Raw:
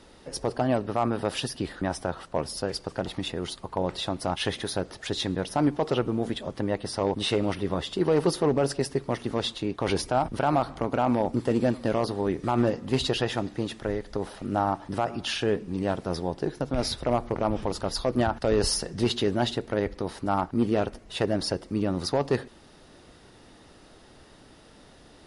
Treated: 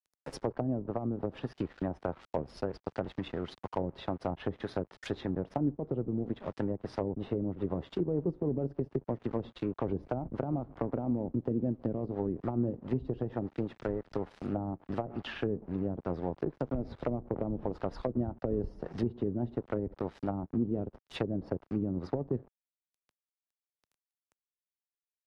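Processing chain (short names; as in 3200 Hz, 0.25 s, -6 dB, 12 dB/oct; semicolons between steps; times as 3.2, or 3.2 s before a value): crossover distortion -41.5 dBFS; treble ducked by the level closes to 340 Hz, closed at -23 dBFS; three-band squash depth 40%; gain -3.5 dB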